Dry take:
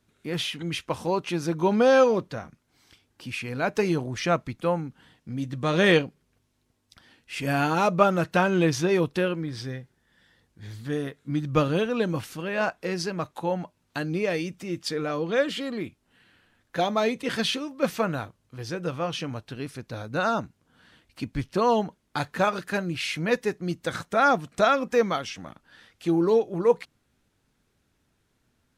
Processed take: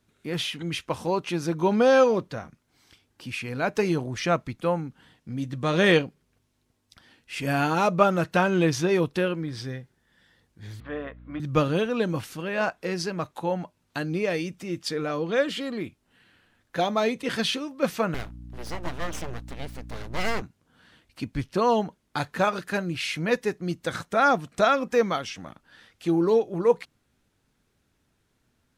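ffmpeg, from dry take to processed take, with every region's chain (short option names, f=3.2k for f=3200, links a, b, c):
-filter_complex "[0:a]asettb=1/sr,asplit=3[a][b][c];[a]atrim=end=10.804[d];[b]atrim=start=10.8:end=11.4,asetpts=PTS-STARTPTS,afade=t=in:d=0.004:c=qsin,afade=t=out:st=0.596:d=0.004:c=qsin,highpass=380,equalizer=f=400:t=q:w=4:g=-7,equalizer=f=590:t=q:w=4:g=8,equalizer=f=1.1k:t=q:w=4:g=8,lowpass=f=2.8k:w=0.5412,lowpass=f=2.8k:w=1.3066,aeval=exprs='val(0)+0.00501*(sin(2*PI*60*n/s)+sin(2*PI*2*60*n/s)/2+sin(2*PI*3*60*n/s)/3+sin(2*PI*4*60*n/s)/4+sin(2*PI*5*60*n/s)/5)':c=same[e];[c]atrim=start=11.396[f];[d][e]acrossfade=d=0.004:c1=hsin:c2=qsin[g];[g][f]acrossfade=d=0.004:c1=qsin:c2=hsin,asettb=1/sr,asplit=3[h][i][j];[h]atrim=end=18.144[k];[i]atrim=start=18.14:end=20.42,asetpts=PTS-STARTPTS,afade=t=in:d=0.004:c=qsin,afade=t=out:st=2.276:d=0.004:c=qsin,aeval=exprs='abs(val(0))':c=same,aeval=exprs='val(0)+0.01*(sin(2*PI*60*n/s)+sin(2*PI*2*60*n/s)/2+sin(2*PI*3*60*n/s)/3+sin(2*PI*4*60*n/s)/4+sin(2*PI*5*60*n/s)/5)':c=same[l];[j]atrim=start=20.416[m];[k][l]acrossfade=d=0.004:c1=hsin:c2=qsin[n];[n][m]acrossfade=d=0.004:c1=qsin:c2=hsin"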